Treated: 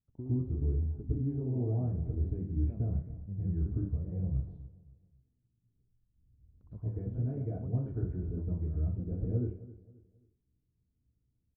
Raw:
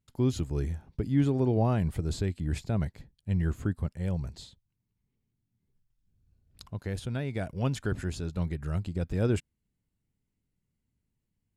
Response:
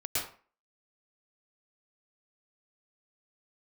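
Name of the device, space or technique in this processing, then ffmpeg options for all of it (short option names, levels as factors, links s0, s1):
television next door: -filter_complex "[0:a]lowpass=2400,acompressor=threshold=0.0251:ratio=4,lowpass=410[s0];[1:a]atrim=start_sample=2205[s1];[s0][s1]afir=irnorm=-1:irlink=0,asettb=1/sr,asplit=3[s2][s3][s4];[s2]atrim=end=2.384[s5];[s3]atrim=start=2.38:end=4.4,asetpts=PTS-STARTPTS,afade=t=in:d=0.004:c=qsin,afade=t=out:st=2.016:d=0.004:c=qsin,asplit=2[s6][s7];[s7]adelay=30,volume=0.422[s8];[s6][s8]amix=inputs=2:normalize=0,atrim=end_sample=89082[s9];[s4]atrim=start=4.396[s10];[s5][s9]acrossfade=d=0.004:c1=hsin:c2=qsin[s11];[s11][s10]acrossfade=d=0.004:c1=qsin:c2=hsin,asplit=2[s12][s13];[s13]adelay=267,lowpass=f=3500:p=1,volume=0.141,asplit=2[s14][s15];[s15]adelay=267,lowpass=f=3500:p=1,volume=0.35,asplit=2[s16][s17];[s17]adelay=267,lowpass=f=3500:p=1,volume=0.35[s18];[s12][s14][s16][s18]amix=inputs=4:normalize=0,volume=0.631"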